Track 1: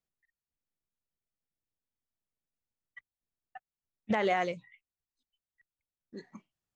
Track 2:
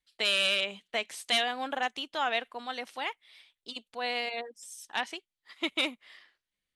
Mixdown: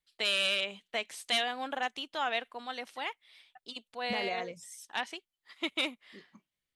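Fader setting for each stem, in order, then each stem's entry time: −8.5, −2.5 decibels; 0.00, 0.00 seconds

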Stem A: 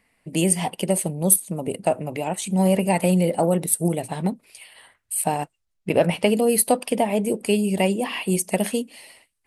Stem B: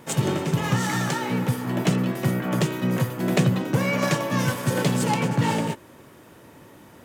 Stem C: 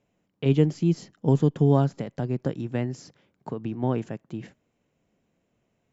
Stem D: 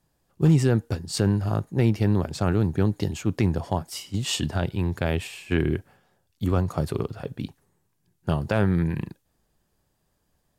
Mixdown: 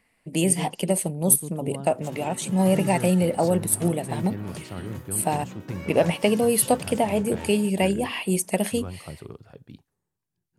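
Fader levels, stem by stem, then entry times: −1.5, −16.0, −15.0, −13.0 decibels; 0.00, 1.95, 0.00, 2.30 seconds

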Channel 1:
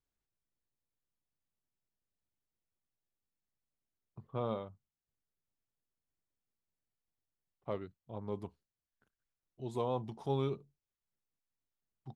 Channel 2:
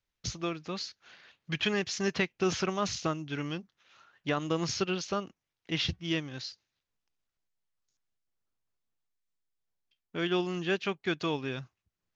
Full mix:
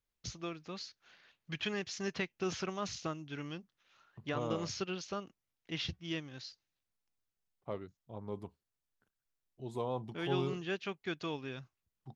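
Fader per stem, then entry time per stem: −2.0, −7.5 decibels; 0.00, 0.00 seconds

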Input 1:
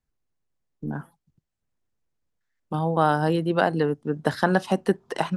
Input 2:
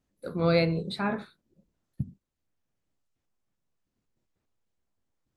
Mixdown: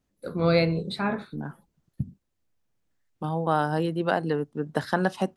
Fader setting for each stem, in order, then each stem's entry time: −3.5, +2.0 decibels; 0.50, 0.00 seconds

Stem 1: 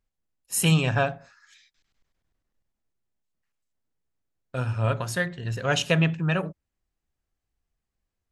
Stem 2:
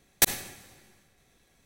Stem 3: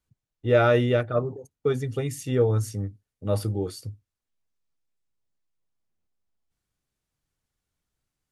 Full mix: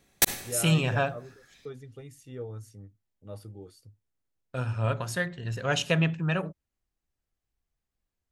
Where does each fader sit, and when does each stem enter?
−3.0, −1.0, −17.0 decibels; 0.00, 0.00, 0.00 seconds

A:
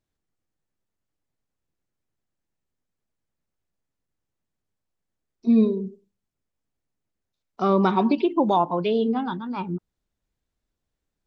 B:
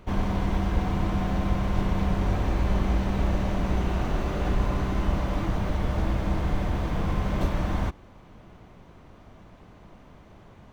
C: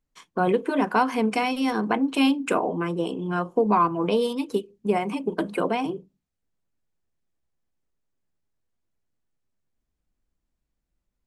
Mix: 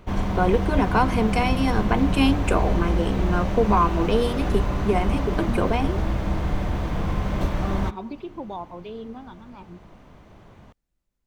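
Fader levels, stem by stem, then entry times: −14.0, +1.5, +0.5 decibels; 0.00, 0.00, 0.00 seconds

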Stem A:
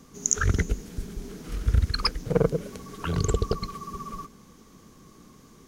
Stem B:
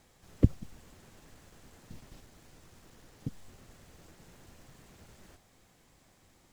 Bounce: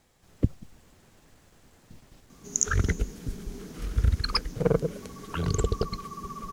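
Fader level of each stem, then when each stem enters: −1.5, −1.5 decibels; 2.30, 0.00 seconds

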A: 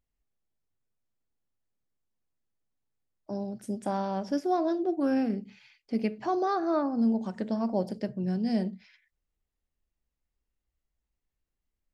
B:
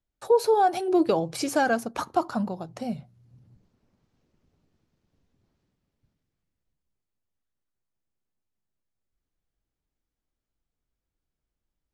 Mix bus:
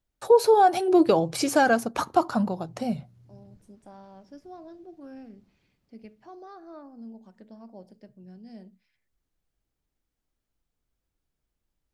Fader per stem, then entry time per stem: −17.5, +3.0 decibels; 0.00, 0.00 seconds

